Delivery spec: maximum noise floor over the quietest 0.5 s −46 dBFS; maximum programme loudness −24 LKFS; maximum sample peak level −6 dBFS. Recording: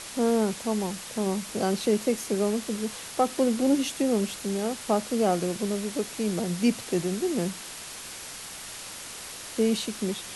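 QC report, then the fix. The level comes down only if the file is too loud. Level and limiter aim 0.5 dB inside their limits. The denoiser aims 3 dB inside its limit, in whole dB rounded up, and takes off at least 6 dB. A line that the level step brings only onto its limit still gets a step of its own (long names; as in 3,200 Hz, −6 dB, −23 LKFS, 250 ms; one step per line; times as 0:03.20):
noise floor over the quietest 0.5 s −40 dBFS: out of spec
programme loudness −28.0 LKFS: in spec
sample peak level −10.5 dBFS: in spec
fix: broadband denoise 9 dB, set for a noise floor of −40 dBFS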